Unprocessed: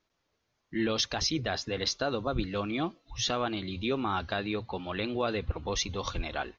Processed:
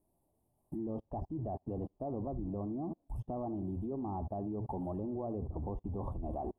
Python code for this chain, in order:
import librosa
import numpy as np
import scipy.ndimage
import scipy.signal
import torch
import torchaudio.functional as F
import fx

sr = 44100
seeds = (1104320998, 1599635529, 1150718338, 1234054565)

p1 = x + 0.5 * 10.0 ** (-41.5 / 20.0) * np.sign(x)
p2 = fx.env_lowpass_down(p1, sr, base_hz=2100.0, full_db=-28.0)
p3 = scipy.signal.sosfilt(scipy.signal.cheby2(4, 40, [1400.0, 6200.0], 'bandstop', fs=sr, output='sos'), p2)
p4 = fx.peak_eq(p3, sr, hz=490.0, db=-10.0, octaves=0.35)
p5 = p4 + fx.echo_single(p4, sr, ms=77, db=-16.5, dry=0)
p6 = fx.level_steps(p5, sr, step_db=22)
p7 = fx.upward_expand(p6, sr, threshold_db=-56.0, expansion=2.5)
y = p7 * librosa.db_to_amplitude(8.0)